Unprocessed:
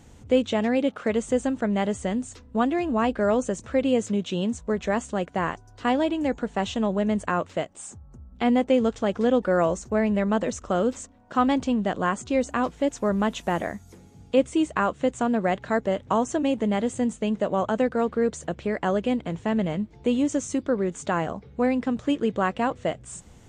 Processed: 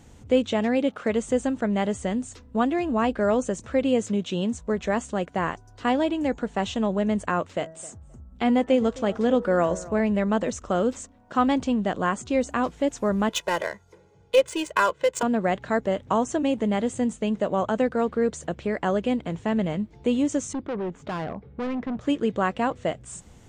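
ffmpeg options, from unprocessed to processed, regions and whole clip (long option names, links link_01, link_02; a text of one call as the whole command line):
ffmpeg -i in.wav -filter_complex "[0:a]asettb=1/sr,asplit=3[link_01][link_02][link_03];[link_01]atrim=end=7.474[link_04];[link_02]atrim=start=7.47:end=10,asetpts=PTS-STARTPTS,afade=type=in:duration=0.004:curve=qsin,afade=type=out:start_time=2.526:duration=0.004:curve=qsin,bandreject=frequency=161.1:width_type=h:width=4,bandreject=frequency=322.2:width_type=h:width=4,bandreject=frequency=483.3:width_type=h:width=4,bandreject=frequency=644.4:width_type=h:width=4,bandreject=frequency=805.5:width_type=h:width=4,bandreject=frequency=966.6:width_type=h:width=4,bandreject=frequency=1127.7:width_type=h:width=4,bandreject=frequency=1288.8:width_type=h:width=4,bandreject=frequency=1449.9:width_type=h:width=4,bandreject=frequency=1611:width_type=h:width=4,bandreject=frequency=1772.1:width_type=h:width=4,bandreject=frequency=1933.2:width_type=h:width=4,asplit=2[link_05][link_06];[link_06]adelay=263,lowpass=frequency=2300:poles=1,volume=-19.5dB,asplit=2[link_07][link_08];[link_08]adelay=263,lowpass=frequency=2300:poles=1,volume=0.18[link_09];[link_05][link_07][link_09]amix=inputs=3:normalize=0,atrim=end_sample=111573[link_10];[link_03]atrim=start=9.996[link_11];[link_04][link_10]acrossfade=duration=0.004:curve1=hsin:curve2=qsin[link_12];[link_12][link_11]acrossfade=duration=0.004:curve1=qsin:curve2=hsin,asettb=1/sr,asplit=3[link_13][link_14][link_15];[link_13]atrim=end=13.294[link_16];[link_14]atrim=start=13.29:end=15.23,asetpts=PTS-STARTPTS,afade=type=in:duration=0.004:curve=qsin,afade=type=out:start_time=1.936:duration=0.004:curve=qsin,aemphasis=mode=production:type=riaa,adynamicsmooth=sensitivity=5:basefreq=1600,aecho=1:1:2:0.9,atrim=end_sample=85554[link_17];[link_15]atrim=start=15.226[link_18];[link_16][link_17]acrossfade=duration=0.004:curve1=hsin:curve2=qsin[link_19];[link_19][link_18]acrossfade=duration=0.004:curve1=qsin:curve2=hsin,asettb=1/sr,asplit=3[link_20][link_21][link_22];[link_20]atrim=end=20.534[link_23];[link_21]atrim=start=20.53:end=22.01,asetpts=PTS-STARTPTS,afade=type=in:duration=0.004:curve=qsin,afade=type=out:start_time=1.476:duration=0.004:curve=qsin,asoftclip=type=hard:threshold=-26dB,adynamicsmooth=sensitivity=1.5:basefreq=2300[link_24];[link_22]atrim=start=22.006[link_25];[link_23][link_24]acrossfade=duration=0.004:curve1=hsin:curve2=qsin[link_26];[link_26][link_25]acrossfade=duration=0.004:curve1=qsin:curve2=hsin" out.wav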